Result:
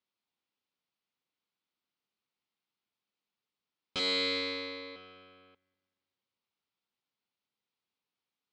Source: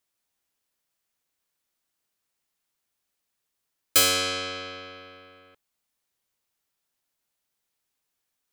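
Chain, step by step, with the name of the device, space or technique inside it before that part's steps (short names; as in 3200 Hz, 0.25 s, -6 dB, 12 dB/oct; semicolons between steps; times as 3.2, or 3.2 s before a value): 3.99–4.96 ripple EQ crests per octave 1, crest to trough 18 dB; analogue delay pedal into a guitar amplifier (analogue delay 0.195 s, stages 4096, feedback 46%, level -21.5 dB; tube stage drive 25 dB, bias 0.75; speaker cabinet 110–4500 Hz, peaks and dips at 210 Hz +4 dB, 630 Hz -5 dB, 1700 Hz -7 dB)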